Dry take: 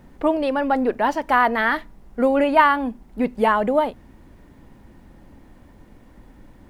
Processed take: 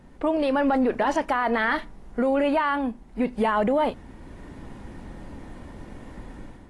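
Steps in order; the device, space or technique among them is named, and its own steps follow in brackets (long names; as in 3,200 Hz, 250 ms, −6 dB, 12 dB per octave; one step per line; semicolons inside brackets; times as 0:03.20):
low-bitrate web radio (automatic gain control gain up to 9.5 dB; brickwall limiter −12 dBFS, peak gain reduction 11 dB; level −2.5 dB; AAC 32 kbit/s 24,000 Hz)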